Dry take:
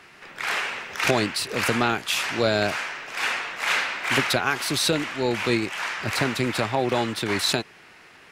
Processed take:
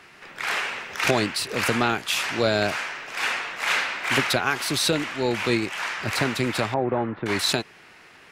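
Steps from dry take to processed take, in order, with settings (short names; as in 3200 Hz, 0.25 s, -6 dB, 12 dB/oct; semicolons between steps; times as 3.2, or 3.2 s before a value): 6.74–7.26 Bessel low-pass 1200 Hz, order 4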